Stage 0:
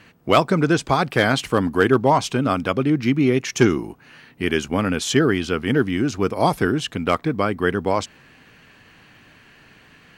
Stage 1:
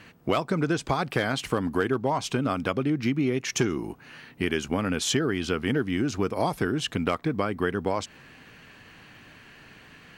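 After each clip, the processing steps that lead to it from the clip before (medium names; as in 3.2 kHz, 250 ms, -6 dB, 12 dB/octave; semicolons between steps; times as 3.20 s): compression 5:1, threshold -22 dBFS, peak gain reduction 11.5 dB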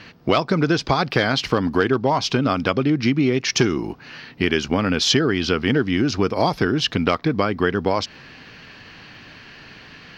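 resonant high shelf 6.6 kHz -10 dB, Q 3; trim +6.5 dB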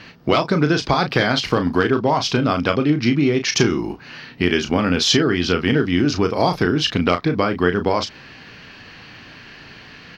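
doubling 34 ms -8 dB; trim +1 dB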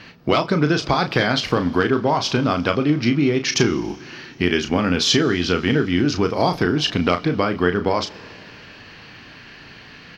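Schroeder reverb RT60 3.3 s, combs from 27 ms, DRR 19 dB; trim -1 dB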